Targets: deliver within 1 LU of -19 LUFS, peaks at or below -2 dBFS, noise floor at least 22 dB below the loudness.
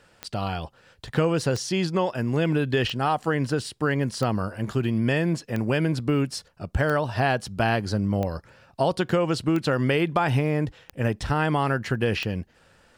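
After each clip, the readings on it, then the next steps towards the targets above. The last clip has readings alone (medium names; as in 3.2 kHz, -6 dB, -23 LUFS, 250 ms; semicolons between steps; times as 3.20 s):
clicks found 10; loudness -25.5 LUFS; peak level -7.5 dBFS; loudness target -19.0 LUFS
-> de-click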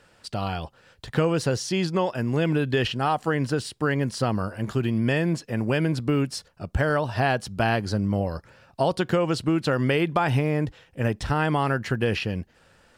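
clicks found 0; loudness -25.5 LUFS; peak level -7.5 dBFS; loudness target -19.0 LUFS
-> trim +6.5 dB; peak limiter -2 dBFS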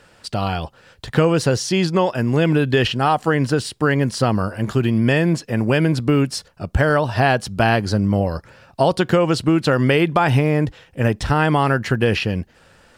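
loudness -19.0 LUFS; peak level -2.0 dBFS; noise floor -53 dBFS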